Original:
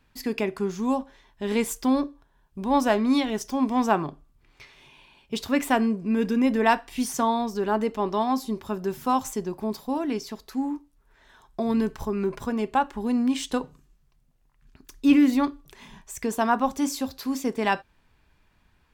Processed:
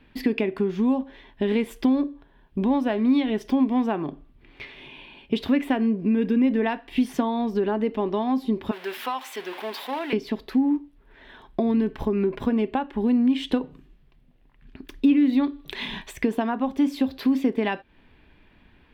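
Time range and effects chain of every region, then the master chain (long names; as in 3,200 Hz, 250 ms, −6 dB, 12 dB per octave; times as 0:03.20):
0:08.71–0:10.13: converter with a step at zero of −34.5 dBFS + high-pass filter 1,000 Hz
0:15.17–0:16.13: parametric band 3,900 Hz +8.5 dB 0.26 octaves + one half of a high-frequency compander encoder only
whole clip: downward compressor 5 to 1, threshold −32 dBFS; drawn EQ curve 140 Hz 0 dB, 270 Hz +8 dB, 420 Hz +5 dB, 650 Hz +2 dB, 1,300 Hz −3 dB, 1,800 Hz +3 dB, 3,300 Hz +3 dB, 6,700 Hz −18 dB, 11,000 Hz −12 dB; level +6.5 dB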